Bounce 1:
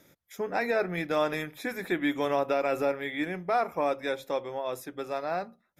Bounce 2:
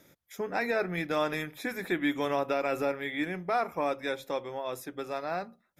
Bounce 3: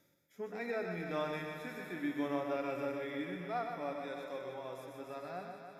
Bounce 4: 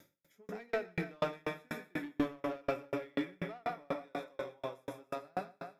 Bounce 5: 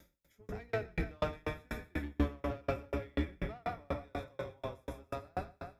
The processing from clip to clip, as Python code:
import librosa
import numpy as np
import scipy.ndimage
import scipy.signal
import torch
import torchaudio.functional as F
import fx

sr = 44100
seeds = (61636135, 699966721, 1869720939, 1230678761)

y1 = fx.dynamic_eq(x, sr, hz=590.0, q=1.1, threshold_db=-37.0, ratio=4.0, max_db=-3)
y2 = fx.echo_heads(y1, sr, ms=150, heads='first and second', feedback_pct=65, wet_db=-12)
y2 = fx.hpss(y2, sr, part='percussive', gain_db=-15)
y2 = y2 + 10.0 ** (-6.0 / 20.0) * np.pad(y2, (int(126 * sr / 1000.0), 0))[:len(y2)]
y2 = F.gain(torch.from_numpy(y2), -7.5).numpy()
y3 = 10.0 ** (-32.5 / 20.0) * np.tanh(y2 / 10.0 ** (-32.5 / 20.0))
y3 = fx.tremolo_decay(y3, sr, direction='decaying', hz=4.1, depth_db=40)
y3 = F.gain(torch.from_numpy(y3), 11.5).numpy()
y4 = fx.octave_divider(y3, sr, octaves=2, level_db=3.0)
y4 = F.gain(torch.from_numpy(y4), -1.0).numpy()